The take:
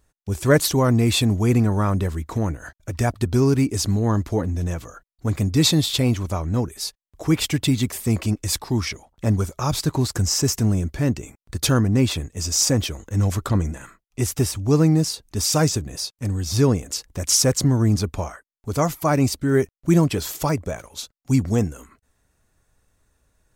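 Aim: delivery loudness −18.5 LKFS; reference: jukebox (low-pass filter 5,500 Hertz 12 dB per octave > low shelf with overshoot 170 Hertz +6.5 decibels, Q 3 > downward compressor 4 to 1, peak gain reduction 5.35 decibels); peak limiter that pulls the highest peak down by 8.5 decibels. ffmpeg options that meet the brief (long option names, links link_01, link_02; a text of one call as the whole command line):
ffmpeg -i in.wav -af "alimiter=limit=-13.5dB:level=0:latency=1,lowpass=5500,lowshelf=frequency=170:width_type=q:width=3:gain=6.5,acompressor=threshold=-14dB:ratio=4,volume=2dB" out.wav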